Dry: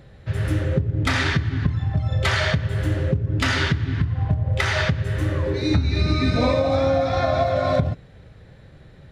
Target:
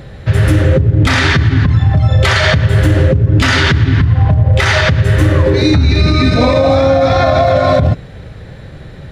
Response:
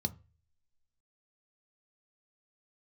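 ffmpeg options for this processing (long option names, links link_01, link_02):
-af "alimiter=level_in=16dB:limit=-1dB:release=50:level=0:latency=1,volume=-1dB"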